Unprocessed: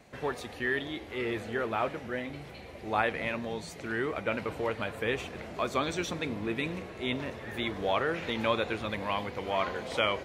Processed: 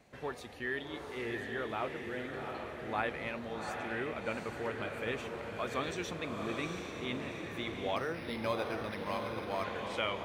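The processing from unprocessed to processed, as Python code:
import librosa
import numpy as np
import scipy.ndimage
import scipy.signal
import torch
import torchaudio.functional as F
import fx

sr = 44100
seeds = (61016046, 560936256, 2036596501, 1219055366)

y = fx.echo_diffused(x, sr, ms=756, feedback_pct=45, wet_db=-4)
y = fx.resample_linear(y, sr, factor=6, at=(7.96, 9.64))
y = y * librosa.db_to_amplitude(-6.5)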